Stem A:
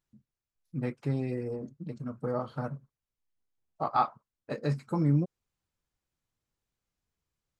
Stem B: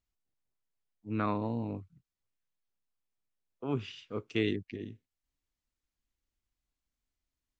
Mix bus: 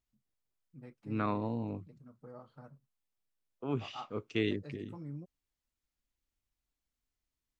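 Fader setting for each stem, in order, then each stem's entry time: -18.5, -1.5 dB; 0.00, 0.00 s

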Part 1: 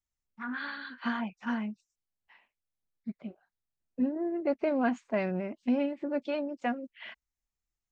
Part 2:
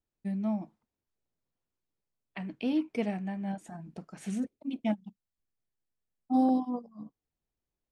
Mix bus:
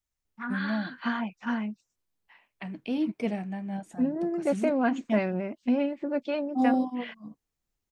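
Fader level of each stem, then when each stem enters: +2.5, +0.5 dB; 0.00, 0.25 s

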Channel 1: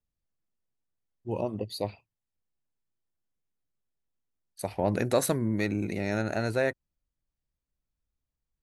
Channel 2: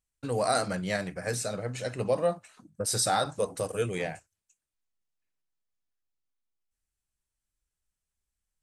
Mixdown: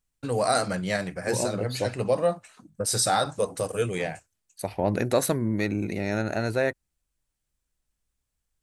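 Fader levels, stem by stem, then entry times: +2.0, +3.0 dB; 0.00, 0.00 s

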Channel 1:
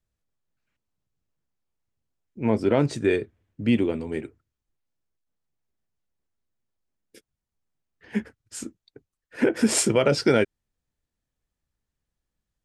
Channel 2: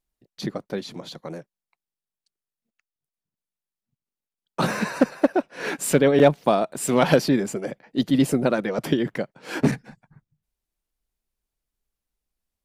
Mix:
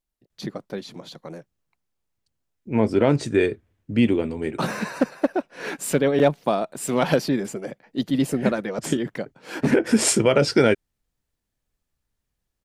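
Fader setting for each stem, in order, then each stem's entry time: +2.5, -2.5 dB; 0.30, 0.00 s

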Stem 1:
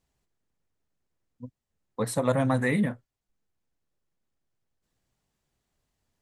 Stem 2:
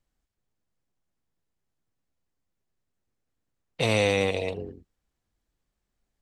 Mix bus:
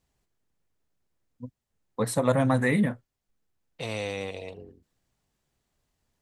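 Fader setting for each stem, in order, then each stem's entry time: +1.5, -9.5 dB; 0.00, 0.00 s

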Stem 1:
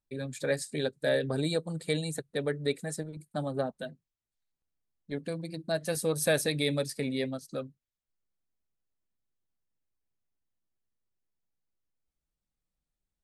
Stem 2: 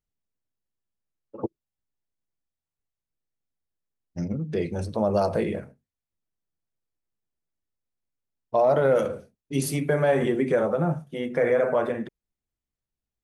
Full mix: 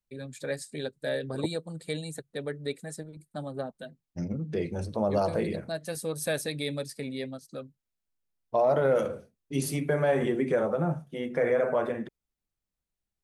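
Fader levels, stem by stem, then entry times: -3.5, -3.5 dB; 0.00, 0.00 s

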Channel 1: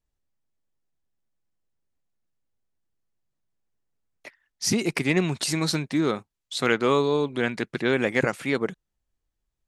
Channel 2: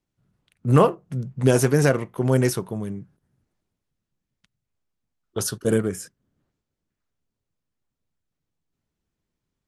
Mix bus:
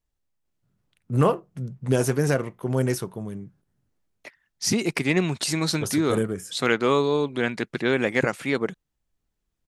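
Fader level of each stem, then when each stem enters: +0.5, -4.0 dB; 0.00, 0.45 s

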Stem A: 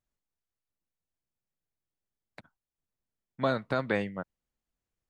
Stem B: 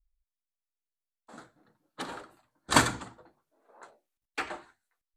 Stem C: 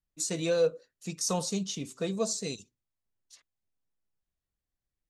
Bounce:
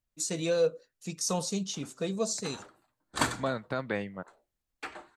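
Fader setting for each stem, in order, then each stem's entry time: -3.5, -6.5, -0.5 dB; 0.00, 0.45, 0.00 s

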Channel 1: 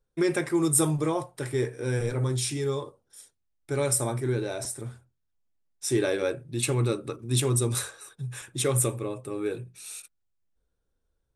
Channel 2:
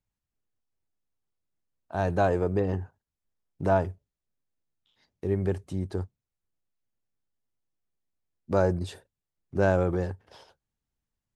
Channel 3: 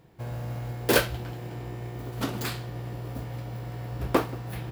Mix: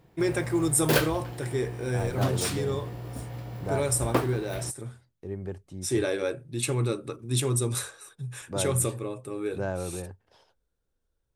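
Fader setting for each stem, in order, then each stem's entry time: -1.5, -8.5, -2.0 dB; 0.00, 0.00, 0.00 s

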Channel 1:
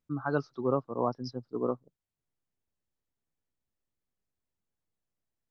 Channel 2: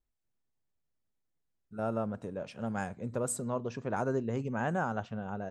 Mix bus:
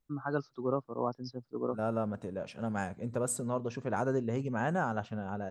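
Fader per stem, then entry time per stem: -3.5, +0.5 dB; 0.00, 0.00 s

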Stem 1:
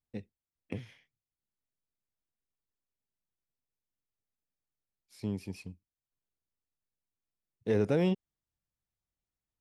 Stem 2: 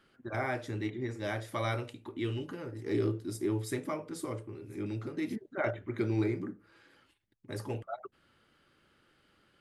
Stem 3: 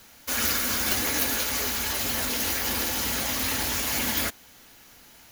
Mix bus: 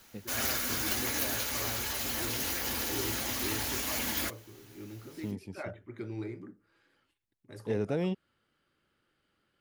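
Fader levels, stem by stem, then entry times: -3.5, -8.5, -6.5 dB; 0.00, 0.00, 0.00 s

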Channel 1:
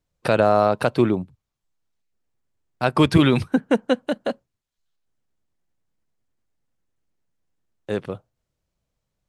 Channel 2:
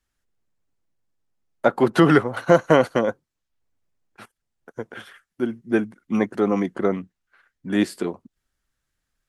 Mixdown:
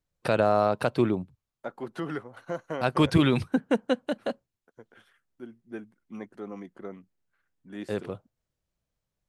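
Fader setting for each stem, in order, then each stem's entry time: -5.5, -18.5 dB; 0.00, 0.00 s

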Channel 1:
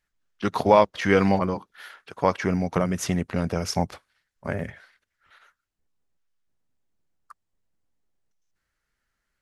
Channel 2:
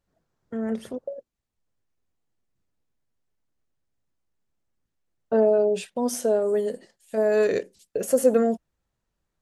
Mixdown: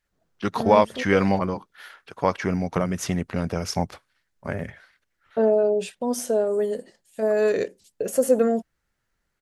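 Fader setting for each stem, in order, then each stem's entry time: -0.5, 0.0 dB; 0.00, 0.05 s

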